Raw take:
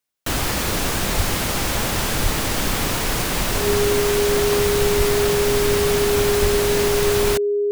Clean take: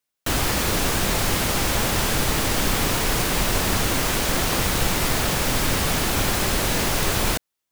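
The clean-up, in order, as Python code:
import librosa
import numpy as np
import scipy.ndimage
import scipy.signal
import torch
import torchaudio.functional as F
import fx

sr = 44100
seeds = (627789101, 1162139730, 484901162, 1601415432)

y = fx.notch(x, sr, hz=410.0, q=30.0)
y = fx.fix_deplosive(y, sr, at_s=(1.16, 2.22, 4.97, 6.41))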